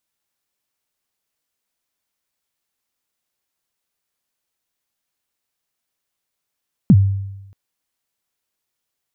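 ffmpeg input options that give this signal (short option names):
-f lavfi -i "aevalsrc='0.631*pow(10,-3*t/0.97)*sin(2*PI*(240*0.051/log(98/240)*(exp(log(98/240)*min(t,0.051)/0.051)-1)+98*max(t-0.051,0)))':d=0.63:s=44100"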